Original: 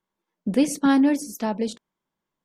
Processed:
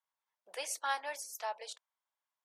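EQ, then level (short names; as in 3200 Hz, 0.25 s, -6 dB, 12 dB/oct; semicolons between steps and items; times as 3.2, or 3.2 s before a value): inverse Chebyshev high-pass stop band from 260 Hz, stop band 50 dB; -7.0 dB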